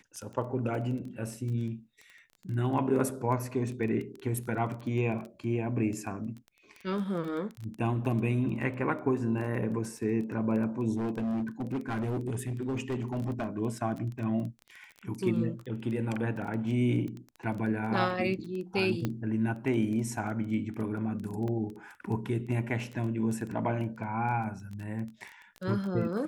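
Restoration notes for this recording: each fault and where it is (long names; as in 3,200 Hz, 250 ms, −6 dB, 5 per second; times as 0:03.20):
surface crackle 12 per second −35 dBFS
0:10.96–0:13.47: clipping −28 dBFS
0:19.05: click −18 dBFS
0:21.48: drop-out 2 ms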